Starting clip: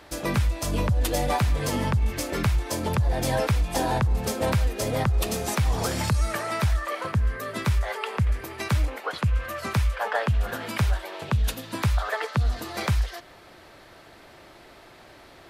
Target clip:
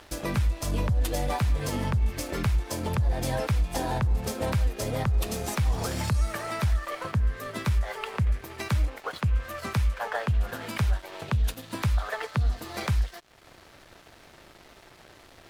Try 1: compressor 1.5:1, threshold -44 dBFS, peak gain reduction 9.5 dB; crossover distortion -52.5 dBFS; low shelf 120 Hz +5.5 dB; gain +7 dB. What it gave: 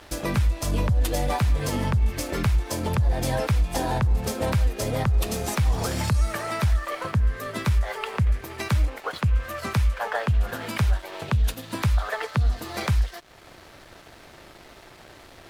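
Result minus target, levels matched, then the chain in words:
compressor: peak gain reduction -3 dB
compressor 1.5:1, threshold -53 dBFS, peak gain reduction 12.5 dB; crossover distortion -52.5 dBFS; low shelf 120 Hz +5.5 dB; gain +7 dB

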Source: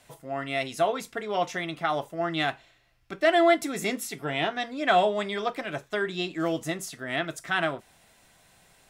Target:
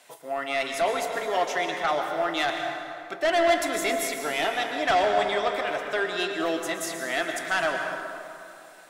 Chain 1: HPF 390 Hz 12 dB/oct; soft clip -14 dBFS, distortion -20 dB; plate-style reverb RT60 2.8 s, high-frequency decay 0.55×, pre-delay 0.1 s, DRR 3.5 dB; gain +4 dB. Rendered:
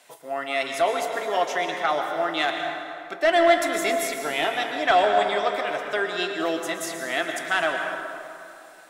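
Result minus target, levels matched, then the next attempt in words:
soft clip: distortion -9 dB
HPF 390 Hz 12 dB/oct; soft clip -22 dBFS, distortion -10 dB; plate-style reverb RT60 2.8 s, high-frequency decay 0.55×, pre-delay 0.1 s, DRR 3.5 dB; gain +4 dB

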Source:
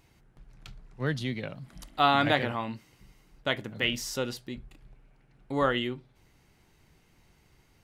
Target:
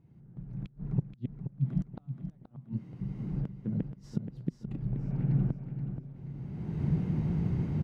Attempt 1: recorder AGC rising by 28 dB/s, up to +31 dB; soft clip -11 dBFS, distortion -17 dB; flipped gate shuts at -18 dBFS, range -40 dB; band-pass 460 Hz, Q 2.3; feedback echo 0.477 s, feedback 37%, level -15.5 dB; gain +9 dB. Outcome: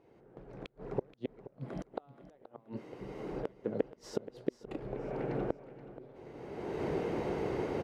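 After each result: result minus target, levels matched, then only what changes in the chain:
500 Hz band +17.0 dB; echo-to-direct -6.5 dB
change: band-pass 160 Hz, Q 2.3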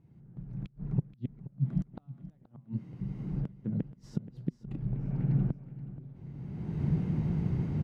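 echo-to-direct -6.5 dB
change: feedback echo 0.477 s, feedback 37%, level -9 dB

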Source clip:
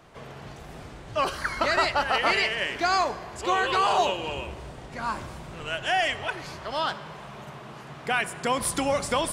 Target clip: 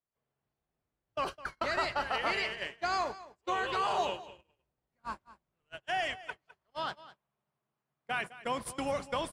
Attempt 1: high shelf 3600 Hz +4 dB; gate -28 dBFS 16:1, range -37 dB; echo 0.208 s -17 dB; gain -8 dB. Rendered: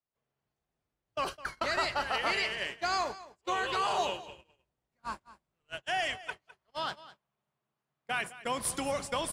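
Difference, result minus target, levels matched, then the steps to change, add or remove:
8000 Hz band +7.5 dB
change: high shelf 3600 Hz -3 dB

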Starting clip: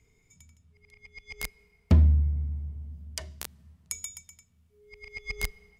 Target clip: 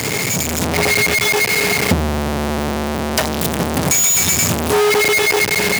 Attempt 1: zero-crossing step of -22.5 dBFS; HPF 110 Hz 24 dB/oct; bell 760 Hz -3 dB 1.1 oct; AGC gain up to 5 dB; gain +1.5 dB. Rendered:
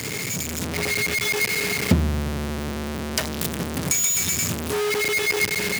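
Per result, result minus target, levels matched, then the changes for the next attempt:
1000 Hz band -4.5 dB; zero-crossing step: distortion -5 dB
change: bell 760 Hz +3.5 dB 1.1 oct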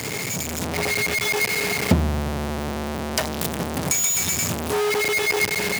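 zero-crossing step: distortion -5 dB
change: zero-crossing step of -14 dBFS

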